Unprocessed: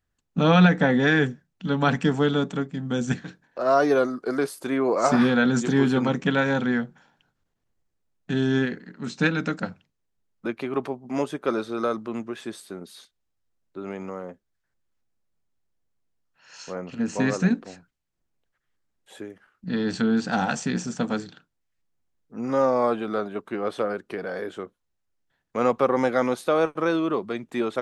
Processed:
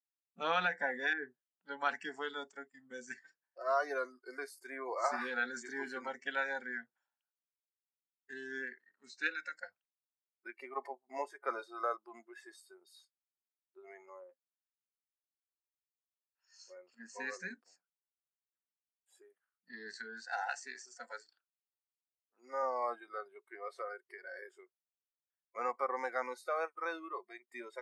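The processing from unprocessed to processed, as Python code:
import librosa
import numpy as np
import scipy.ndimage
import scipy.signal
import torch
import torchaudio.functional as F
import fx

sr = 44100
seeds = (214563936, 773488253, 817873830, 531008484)

y = fx.lowpass(x, sr, hz=1200.0, slope=12, at=(1.13, 1.66))
y = fx.peak_eq(y, sr, hz=800.0, db=6.0, octaves=1.5, at=(10.57, 14.24))
y = fx.highpass(y, sr, hz=300.0, slope=12, at=(19.96, 22.63))
y = scipy.signal.sosfilt(scipy.signal.butter(2, 870.0, 'highpass', fs=sr, output='sos'), y)
y = fx.noise_reduce_blind(y, sr, reduce_db=20)
y = fx.high_shelf(y, sr, hz=3100.0, db=-9.5)
y = F.gain(torch.from_numpy(y), -6.5).numpy()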